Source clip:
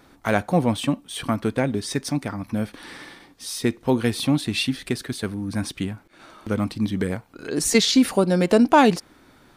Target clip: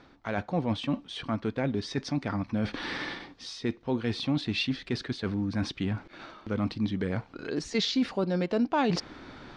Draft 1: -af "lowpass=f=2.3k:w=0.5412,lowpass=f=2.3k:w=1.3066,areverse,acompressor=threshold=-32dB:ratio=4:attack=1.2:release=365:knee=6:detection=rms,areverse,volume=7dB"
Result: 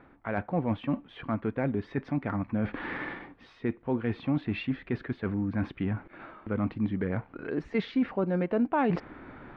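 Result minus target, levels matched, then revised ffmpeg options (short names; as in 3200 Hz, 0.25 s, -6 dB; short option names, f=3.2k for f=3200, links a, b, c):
4000 Hz band -14.0 dB
-af "lowpass=f=5.2k:w=0.5412,lowpass=f=5.2k:w=1.3066,areverse,acompressor=threshold=-32dB:ratio=4:attack=1.2:release=365:knee=6:detection=rms,areverse,volume=7dB"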